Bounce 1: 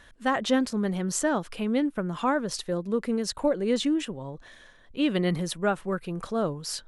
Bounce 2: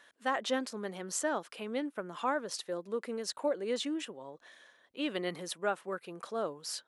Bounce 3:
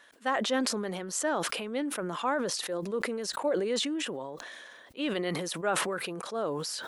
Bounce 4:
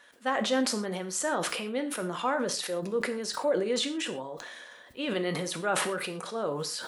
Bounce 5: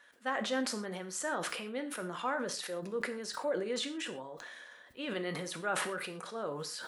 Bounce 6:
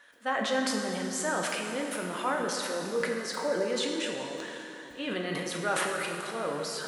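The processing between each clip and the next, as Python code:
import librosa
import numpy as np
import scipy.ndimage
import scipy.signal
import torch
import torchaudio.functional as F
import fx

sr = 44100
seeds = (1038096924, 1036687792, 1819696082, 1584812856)

y1 = scipy.signal.sosfilt(scipy.signal.butter(2, 370.0, 'highpass', fs=sr, output='sos'), x)
y1 = y1 * librosa.db_to_amplitude(-5.5)
y2 = fx.sustainer(y1, sr, db_per_s=25.0)
y2 = y2 * librosa.db_to_amplitude(2.0)
y3 = fx.rev_gated(y2, sr, seeds[0], gate_ms=150, shape='falling', drr_db=6.0)
y4 = fx.peak_eq(y3, sr, hz=1600.0, db=4.0, octaves=0.89)
y4 = y4 * librosa.db_to_amplitude(-7.0)
y5 = fx.rev_plate(y4, sr, seeds[1], rt60_s=3.3, hf_ratio=0.85, predelay_ms=0, drr_db=2.0)
y5 = y5 * librosa.db_to_amplitude(3.5)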